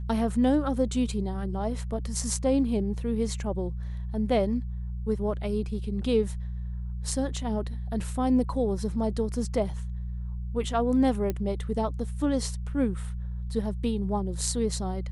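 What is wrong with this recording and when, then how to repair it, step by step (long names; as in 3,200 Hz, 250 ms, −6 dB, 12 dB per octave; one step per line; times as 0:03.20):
mains hum 60 Hz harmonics 3 −33 dBFS
0:11.30: click −16 dBFS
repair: click removal
hum removal 60 Hz, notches 3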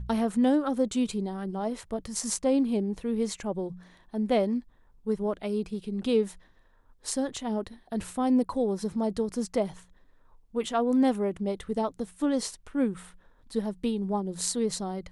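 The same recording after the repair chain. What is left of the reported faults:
0:11.30: click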